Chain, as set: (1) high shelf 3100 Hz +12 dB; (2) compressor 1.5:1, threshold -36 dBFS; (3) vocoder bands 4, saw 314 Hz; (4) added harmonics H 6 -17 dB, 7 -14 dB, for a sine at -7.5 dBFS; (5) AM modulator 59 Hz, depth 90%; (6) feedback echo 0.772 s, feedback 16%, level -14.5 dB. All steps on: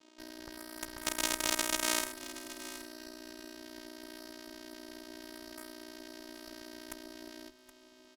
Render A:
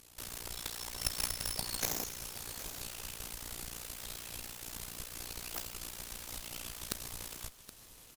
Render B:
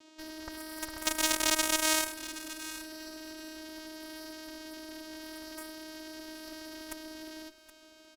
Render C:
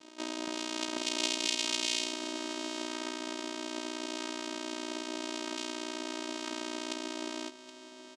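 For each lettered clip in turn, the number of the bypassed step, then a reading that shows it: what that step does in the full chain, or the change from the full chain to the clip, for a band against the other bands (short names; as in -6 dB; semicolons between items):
3, 125 Hz band +19.0 dB; 5, crest factor change -4.0 dB; 4, momentary loudness spread change -10 LU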